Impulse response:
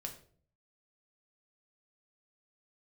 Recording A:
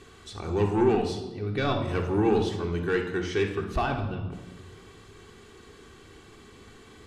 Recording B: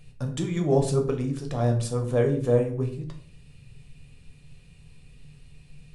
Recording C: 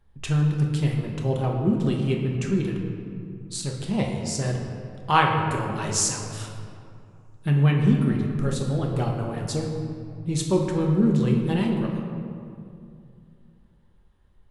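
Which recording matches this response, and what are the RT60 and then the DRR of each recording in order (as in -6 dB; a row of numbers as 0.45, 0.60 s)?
B; 1.2, 0.50, 2.5 s; 1.5, 2.5, 0.0 dB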